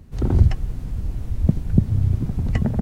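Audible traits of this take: noise floor -34 dBFS; spectral tilt -10.5 dB/octave

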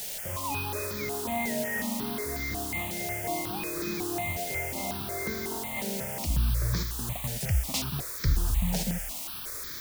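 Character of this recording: a quantiser's noise floor 6-bit, dither triangular; notches that jump at a steady rate 5.5 Hz 310–2800 Hz

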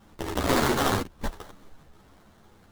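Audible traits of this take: aliases and images of a low sample rate 2.5 kHz, jitter 20%; a shimmering, thickened sound

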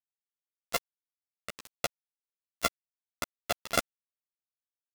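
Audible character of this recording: a buzz of ramps at a fixed pitch in blocks of 64 samples; tremolo saw up 11 Hz, depth 55%; a quantiser's noise floor 6-bit, dither none; a shimmering, thickened sound

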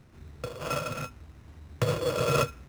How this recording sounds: aliases and images of a low sample rate 3.9 kHz, jitter 0%; IMA ADPCM

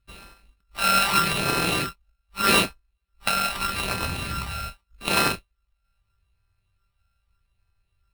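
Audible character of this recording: a buzz of ramps at a fixed pitch in blocks of 32 samples; phasing stages 12, 0.81 Hz, lowest notch 320–2300 Hz; aliases and images of a low sample rate 6.7 kHz, jitter 0%

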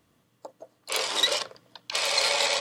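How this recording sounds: noise floor -68 dBFS; spectral tilt +1.5 dB/octave

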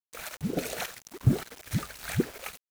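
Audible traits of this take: random-step tremolo, depth 75%; a quantiser's noise floor 8-bit, dither none

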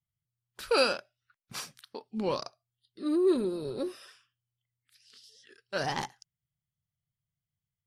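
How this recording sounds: noise floor -91 dBFS; spectral tilt -3.0 dB/octave

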